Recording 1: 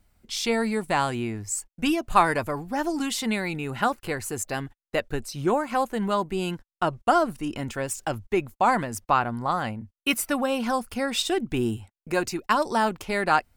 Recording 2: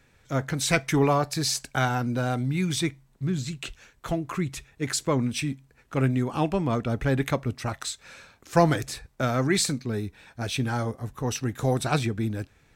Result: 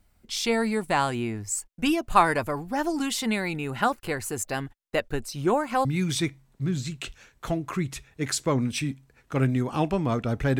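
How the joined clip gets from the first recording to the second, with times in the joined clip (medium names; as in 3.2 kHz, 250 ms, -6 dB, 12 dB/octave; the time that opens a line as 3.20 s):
recording 1
5.85 s: go over to recording 2 from 2.46 s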